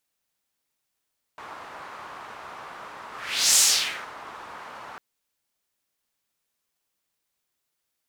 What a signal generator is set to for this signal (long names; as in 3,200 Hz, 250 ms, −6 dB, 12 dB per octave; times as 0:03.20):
pass-by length 3.60 s, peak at 0:02.20, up 0.49 s, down 0.57 s, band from 1,100 Hz, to 7,100 Hz, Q 1.9, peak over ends 24 dB